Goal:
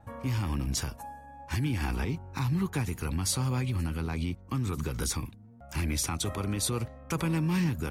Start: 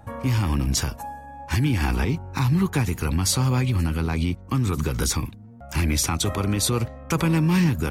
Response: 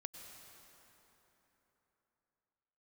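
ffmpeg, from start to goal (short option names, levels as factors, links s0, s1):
-af "adynamicequalizer=threshold=0.00355:dfrequency=9600:dqfactor=5.7:tfrequency=9600:tqfactor=5.7:attack=5:release=100:ratio=0.375:range=3:mode=boostabove:tftype=bell,volume=0.398"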